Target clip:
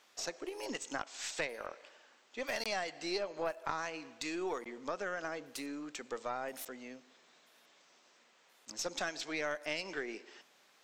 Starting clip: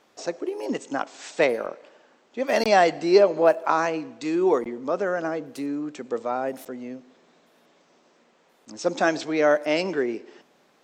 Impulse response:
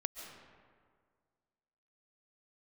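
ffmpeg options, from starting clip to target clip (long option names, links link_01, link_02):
-af "tiltshelf=frequency=870:gain=-8.5,acompressor=threshold=-28dB:ratio=4,aeval=exprs='0.891*(cos(1*acos(clip(val(0)/0.891,-1,1)))-cos(1*PI/2))+0.126*(cos(3*acos(clip(val(0)/0.891,-1,1)))-cos(3*PI/2))+0.0708*(cos(6*acos(clip(val(0)/0.891,-1,1)))-cos(6*PI/2))':channel_layout=same,volume=-2.5dB"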